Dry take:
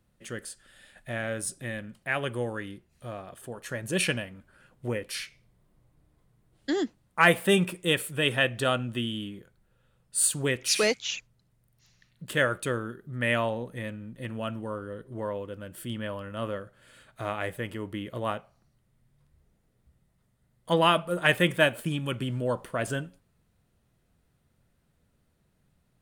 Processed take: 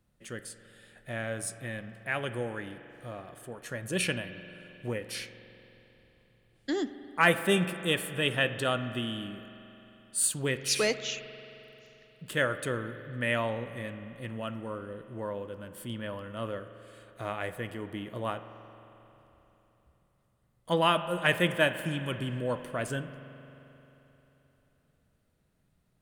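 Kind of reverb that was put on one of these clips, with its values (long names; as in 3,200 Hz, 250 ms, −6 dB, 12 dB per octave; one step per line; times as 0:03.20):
spring reverb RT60 3.5 s, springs 44 ms, chirp 80 ms, DRR 11 dB
level −3 dB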